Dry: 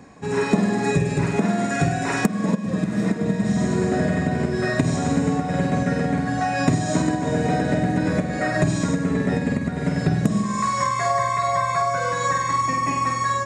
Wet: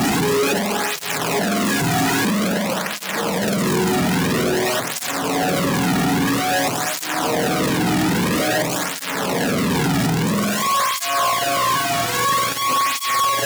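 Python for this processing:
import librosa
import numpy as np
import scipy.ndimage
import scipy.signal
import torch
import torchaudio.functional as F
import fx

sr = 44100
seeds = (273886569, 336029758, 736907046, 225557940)

y = np.sign(x) * np.sqrt(np.mean(np.square(x)))
y = fx.flanger_cancel(y, sr, hz=0.5, depth_ms=2.0)
y = y * 10.0 ** (5.5 / 20.0)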